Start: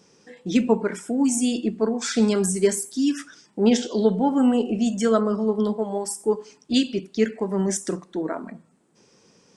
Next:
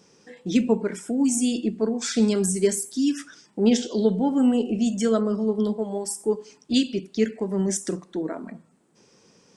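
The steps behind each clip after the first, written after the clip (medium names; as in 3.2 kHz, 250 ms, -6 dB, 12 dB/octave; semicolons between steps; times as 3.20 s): dynamic bell 1.1 kHz, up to -7 dB, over -38 dBFS, Q 0.82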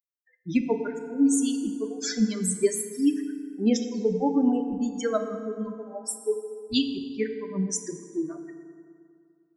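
expander on every frequency bin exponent 3; in parallel at -1.5 dB: compression, threshold -32 dBFS, peak gain reduction 13.5 dB; on the sum: FDN reverb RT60 2.3 s, low-frequency decay 1.05×, high-frequency decay 0.55×, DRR 6.5 dB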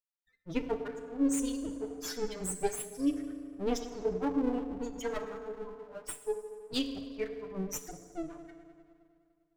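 comb filter that takes the minimum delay 6.8 ms; trim -7 dB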